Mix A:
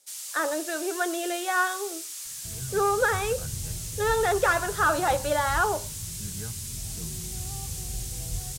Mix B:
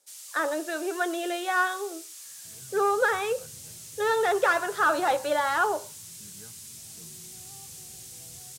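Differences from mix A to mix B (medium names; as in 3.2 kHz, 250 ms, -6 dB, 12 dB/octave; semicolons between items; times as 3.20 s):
first sound -6.5 dB; second sound -9.0 dB; master: add high-pass 180 Hz 12 dB/octave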